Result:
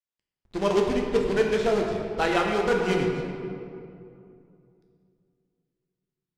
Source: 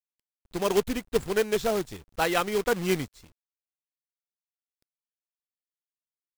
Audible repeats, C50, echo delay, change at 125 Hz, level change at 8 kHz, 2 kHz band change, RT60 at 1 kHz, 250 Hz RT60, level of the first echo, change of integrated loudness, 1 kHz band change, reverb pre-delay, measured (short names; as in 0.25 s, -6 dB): none, 2.5 dB, none, +4.0 dB, -6.0 dB, +2.0 dB, 2.4 s, 3.0 s, none, +2.0 dB, +2.5 dB, 7 ms